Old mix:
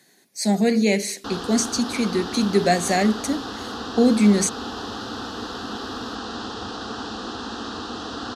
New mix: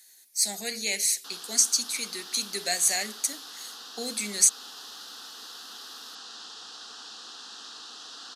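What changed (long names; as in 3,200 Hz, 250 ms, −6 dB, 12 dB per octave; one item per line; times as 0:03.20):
speech +5.5 dB
master: add first difference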